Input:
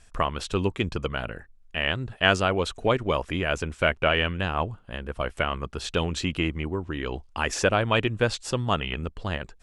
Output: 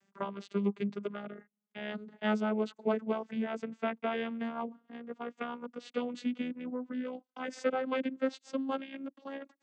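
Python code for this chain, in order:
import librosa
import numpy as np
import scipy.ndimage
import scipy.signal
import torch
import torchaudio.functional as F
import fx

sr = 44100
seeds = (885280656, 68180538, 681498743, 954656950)

y = fx.vocoder_glide(x, sr, note=55, semitones=6)
y = F.gain(torch.from_numpy(y), -7.5).numpy()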